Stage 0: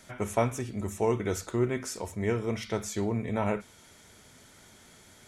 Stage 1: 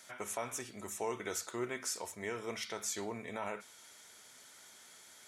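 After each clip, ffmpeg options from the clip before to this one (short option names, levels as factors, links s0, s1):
-af "highpass=f=1300:p=1,alimiter=level_in=1.33:limit=0.0631:level=0:latency=1:release=93,volume=0.75,equalizer=f=2500:w=1.5:g=-2.5,volume=1.12"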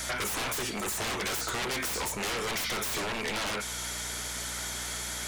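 -filter_complex "[0:a]aeval=exprs='0.0531*sin(PI/2*7.94*val(0)/0.0531)':c=same,aeval=exprs='val(0)+0.00631*(sin(2*PI*60*n/s)+sin(2*PI*2*60*n/s)/2+sin(2*PI*3*60*n/s)/3+sin(2*PI*4*60*n/s)/4+sin(2*PI*5*60*n/s)/5)':c=same,acrossover=split=350|2400[s0][s1][s2];[s0]acompressor=threshold=0.01:ratio=4[s3];[s1]acompressor=threshold=0.0224:ratio=4[s4];[s2]acompressor=threshold=0.0251:ratio=4[s5];[s3][s4][s5]amix=inputs=3:normalize=0"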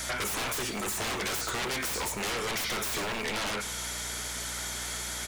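-af "aecho=1:1:102|204|306|408|510|612:0.141|0.0848|0.0509|0.0305|0.0183|0.011"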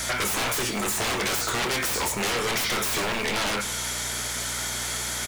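-filter_complex "[0:a]acrusher=bits=8:mix=0:aa=0.000001,asplit=2[s0][s1];[s1]adelay=25,volume=0.299[s2];[s0][s2]amix=inputs=2:normalize=0,volume=1.88"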